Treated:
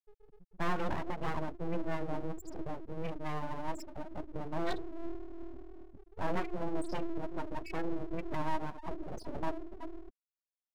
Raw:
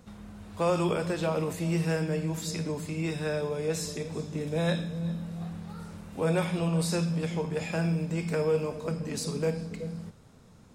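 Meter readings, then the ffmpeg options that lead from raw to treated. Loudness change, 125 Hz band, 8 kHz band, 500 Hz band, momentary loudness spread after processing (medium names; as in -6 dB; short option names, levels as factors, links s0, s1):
-9.5 dB, -14.0 dB, -19.5 dB, -10.5 dB, 11 LU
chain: -af "afftfilt=real='re*gte(hypot(re,im),0.0631)':imag='im*gte(hypot(re,im),0.0631)':win_size=1024:overlap=0.75,aeval=exprs='abs(val(0))':c=same,volume=0.668"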